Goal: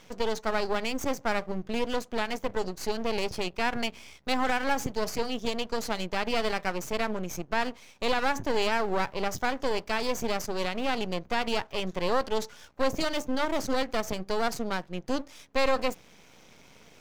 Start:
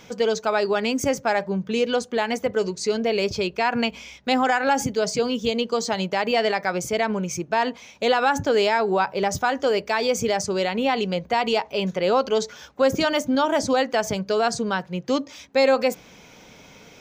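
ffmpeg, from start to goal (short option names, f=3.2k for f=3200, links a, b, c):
-af "aeval=exprs='max(val(0),0)':c=same,volume=-3.5dB"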